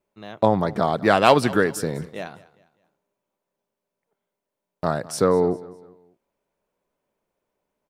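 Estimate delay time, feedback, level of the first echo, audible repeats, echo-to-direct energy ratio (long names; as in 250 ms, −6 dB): 202 ms, 38%, −20.0 dB, 2, −19.5 dB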